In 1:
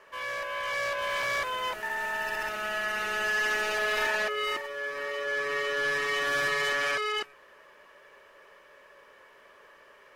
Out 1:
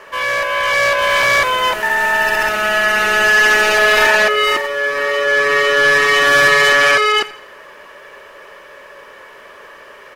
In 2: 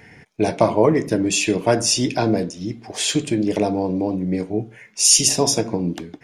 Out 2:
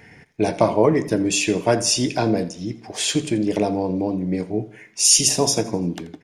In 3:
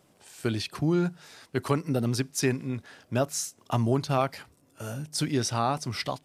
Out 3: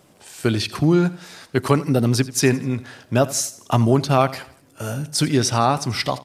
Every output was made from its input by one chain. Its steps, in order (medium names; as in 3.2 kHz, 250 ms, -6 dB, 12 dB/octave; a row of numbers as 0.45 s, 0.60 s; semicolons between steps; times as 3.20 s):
feedback delay 84 ms, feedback 43%, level -18 dB; peak normalisation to -2 dBFS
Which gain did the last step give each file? +16.5 dB, -1.0 dB, +8.5 dB